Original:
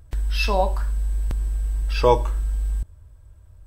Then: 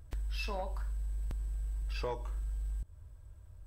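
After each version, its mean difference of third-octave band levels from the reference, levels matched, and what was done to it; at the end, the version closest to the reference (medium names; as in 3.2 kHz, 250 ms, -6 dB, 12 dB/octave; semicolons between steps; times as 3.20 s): 5.5 dB: compression 4:1, threshold -29 dBFS, peak gain reduction 15.5 dB; saturation -22 dBFS, distortion -24 dB; trim -5 dB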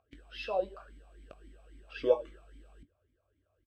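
9.0 dB: doubling 21 ms -11.5 dB; talking filter a-i 3.7 Hz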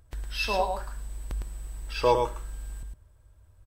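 2.5 dB: bass shelf 240 Hz -6.5 dB; delay 108 ms -5 dB; trim -4.5 dB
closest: third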